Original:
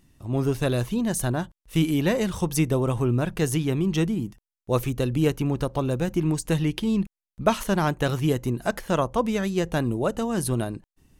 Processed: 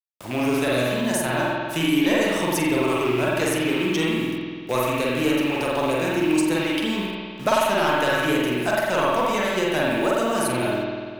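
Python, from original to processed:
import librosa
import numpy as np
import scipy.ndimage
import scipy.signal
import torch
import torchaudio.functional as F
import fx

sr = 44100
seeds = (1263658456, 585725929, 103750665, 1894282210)

p1 = fx.rattle_buzz(x, sr, strikes_db=-23.0, level_db=-29.0)
p2 = fx.highpass(p1, sr, hz=760.0, slope=6)
p3 = fx.room_flutter(p2, sr, wall_m=7.7, rt60_s=0.33)
p4 = 10.0 ** (-23.5 / 20.0) * (np.abs((p3 / 10.0 ** (-23.5 / 20.0) + 3.0) % 4.0 - 2.0) - 1.0)
p5 = p3 + (p4 * librosa.db_to_amplitude(-7.0))
p6 = fx.quant_dither(p5, sr, seeds[0], bits=8, dither='none')
p7 = fx.rev_spring(p6, sr, rt60_s=1.4, pass_ms=(48,), chirp_ms=40, drr_db=-5.0)
y = fx.band_squash(p7, sr, depth_pct=40)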